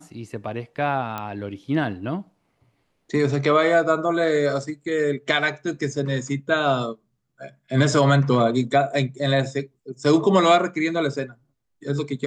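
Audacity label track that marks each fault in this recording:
1.180000	1.180000	pop -15 dBFS

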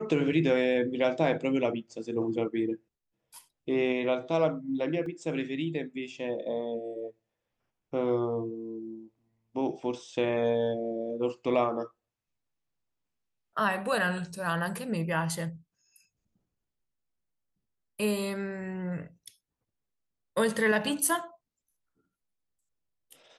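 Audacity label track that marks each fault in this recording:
5.060000	5.060000	dropout 2.6 ms

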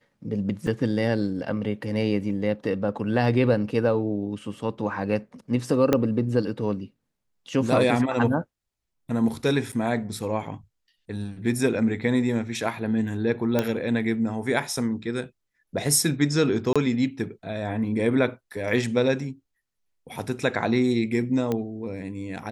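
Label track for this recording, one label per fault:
0.670000	0.670000	dropout 3.4 ms
5.930000	5.930000	pop -7 dBFS
9.720000	9.730000	dropout 6.8 ms
13.590000	13.590000	pop -9 dBFS
16.730000	16.760000	dropout 26 ms
21.520000	21.520000	pop -14 dBFS

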